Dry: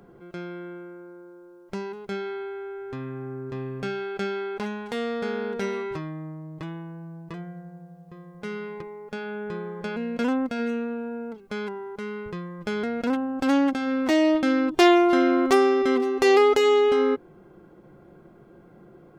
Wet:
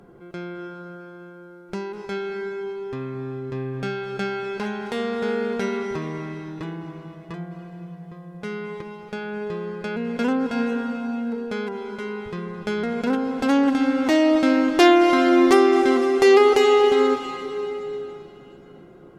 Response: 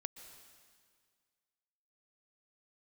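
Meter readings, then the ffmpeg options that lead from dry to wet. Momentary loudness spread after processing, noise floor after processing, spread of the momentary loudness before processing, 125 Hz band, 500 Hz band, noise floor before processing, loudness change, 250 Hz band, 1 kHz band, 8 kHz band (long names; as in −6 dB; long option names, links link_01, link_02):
21 LU, −45 dBFS, 20 LU, +3.5 dB, +3.0 dB, −51 dBFS, +3.0 dB, +3.5 dB, +3.5 dB, +3.0 dB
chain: -filter_complex "[1:a]atrim=start_sample=2205,asetrate=25137,aresample=44100[link_01];[0:a][link_01]afir=irnorm=-1:irlink=0,volume=3dB"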